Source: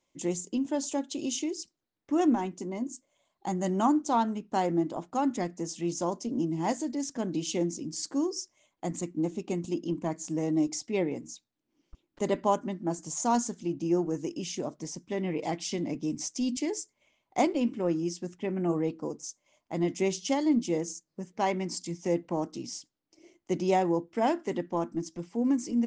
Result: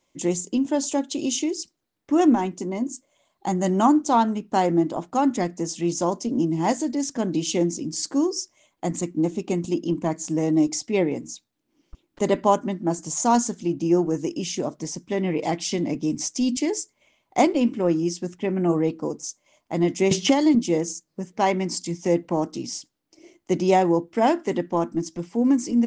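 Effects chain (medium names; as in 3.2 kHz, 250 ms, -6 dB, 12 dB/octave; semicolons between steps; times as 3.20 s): 20.11–20.55 s: three bands compressed up and down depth 100%; trim +7 dB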